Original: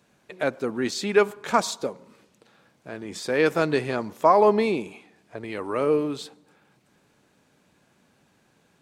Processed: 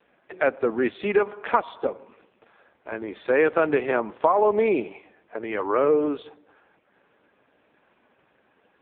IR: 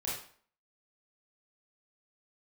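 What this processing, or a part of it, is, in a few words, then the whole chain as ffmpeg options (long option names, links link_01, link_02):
voicemail: -af "highpass=340,lowpass=2800,acompressor=threshold=-22dB:ratio=10,volume=7.5dB" -ar 8000 -c:a libopencore_amrnb -b:a 5150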